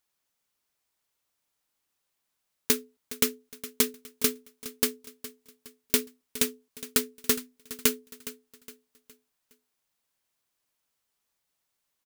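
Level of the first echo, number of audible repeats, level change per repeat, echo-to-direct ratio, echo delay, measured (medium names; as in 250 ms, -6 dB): -15.5 dB, 3, -8.0 dB, -14.5 dB, 414 ms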